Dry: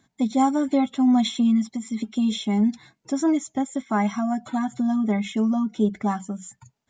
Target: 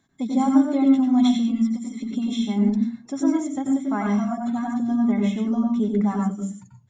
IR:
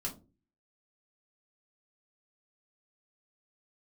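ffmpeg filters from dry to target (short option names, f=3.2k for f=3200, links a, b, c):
-filter_complex "[0:a]asplit=2[a][b];[1:a]atrim=start_sample=2205,highshelf=f=3.7k:g=-9.5,adelay=89[c];[b][c]afir=irnorm=-1:irlink=0,volume=0dB[d];[a][d]amix=inputs=2:normalize=0,volume=-4.5dB"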